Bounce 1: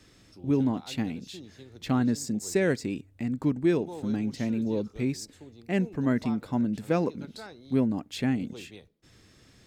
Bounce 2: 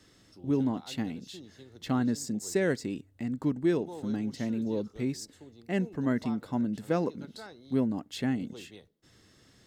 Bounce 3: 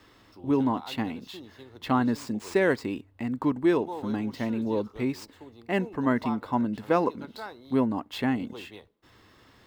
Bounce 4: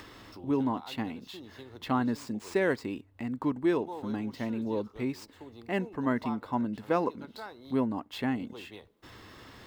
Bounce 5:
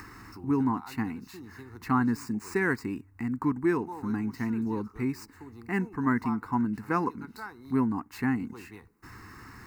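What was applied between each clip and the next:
low-shelf EQ 85 Hz −6.5 dB; notch filter 2,400 Hz, Q 8.6; level −2 dB
running median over 5 samples; graphic EQ with 15 bands 160 Hz −7 dB, 1,000 Hz +10 dB, 2,500 Hz +3 dB, 6,300 Hz −5 dB; level +4 dB
upward compression, threshold −35 dBFS; level −4 dB
phaser with its sweep stopped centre 1,400 Hz, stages 4; level +5.5 dB

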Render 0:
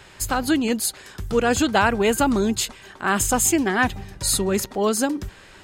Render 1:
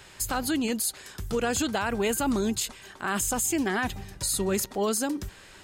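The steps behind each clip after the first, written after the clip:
high-shelf EQ 4,800 Hz +7.5 dB
brickwall limiter −13.5 dBFS, peak gain reduction 11 dB
level −4.5 dB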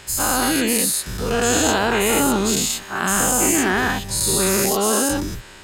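every bin's largest magnitude spread in time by 240 ms
level +2 dB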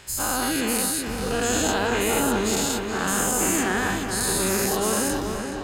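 feedback echo with a low-pass in the loop 423 ms, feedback 67%, low-pass 3,700 Hz, level −6 dB
level −5.5 dB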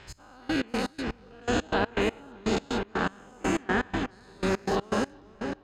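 gate pattern "x...x.x." 122 BPM −24 dB
high-frequency loss of the air 190 metres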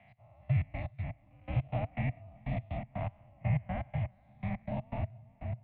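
formant filter u
single-sideband voice off tune −180 Hz 210–3,400 Hz
level +4.5 dB

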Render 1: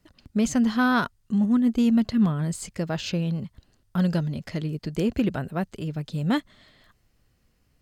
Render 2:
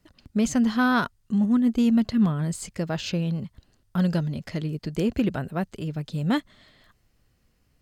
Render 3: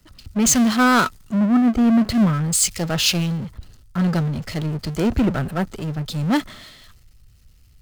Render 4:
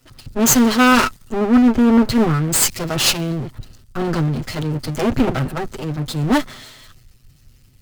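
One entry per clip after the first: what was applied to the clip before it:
no processing that can be heard
hollow resonant body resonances 1,300 Hz, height 10 dB, ringing for 45 ms; power curve on the samples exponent 0.5; multiband upward and downward expander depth 100%
lower of the sound and its delayed copy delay 7.8 ms; level +4.5 dB

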